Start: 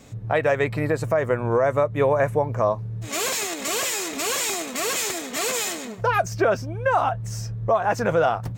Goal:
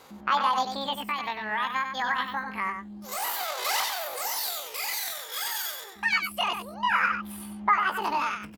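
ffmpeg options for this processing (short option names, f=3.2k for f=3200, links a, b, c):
-filter_complex "[0:a]bass=f=250:g=-14,treble=f=4k:g=-2,aphaser=in_gain=1:out_gain=1:delay=1.1:decay=0.58:speed=0.27:type=sinusoidal,asetrate=80880,aresample=44100,atempo=0.545254,asplit=2[a][b];[b]aecho=0:1:96:0.447[c];[a][c]amix=inputs=2:normalize=0,volume=-6dB"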